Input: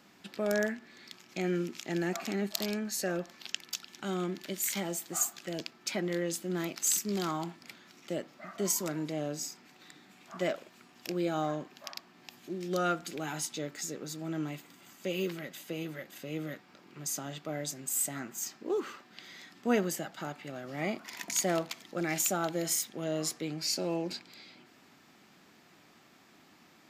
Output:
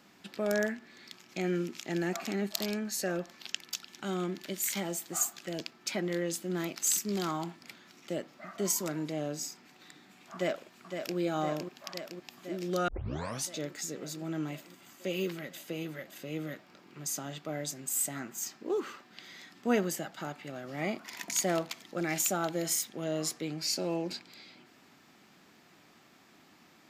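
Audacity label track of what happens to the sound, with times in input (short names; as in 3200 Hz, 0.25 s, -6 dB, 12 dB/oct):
10.330000	11.170000	echo throw 0.51 s, feedback 75%, level -6.5 dB
12.880000	12.880000	tape start 0.58 s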